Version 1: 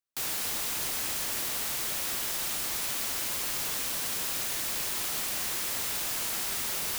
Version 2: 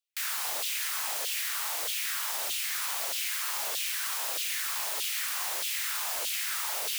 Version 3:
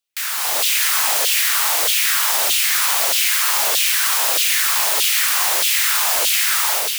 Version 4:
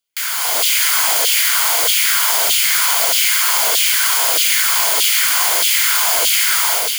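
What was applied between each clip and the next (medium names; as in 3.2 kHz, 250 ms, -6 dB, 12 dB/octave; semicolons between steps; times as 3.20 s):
LFO high-pass saw down 1.6 Hz 490–3300 Hz; trim -1 dB
level rider gain up to 7 dB; trim +8 dB
rippled EQ curve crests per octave 1.8, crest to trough 6 dB; trim +2 dB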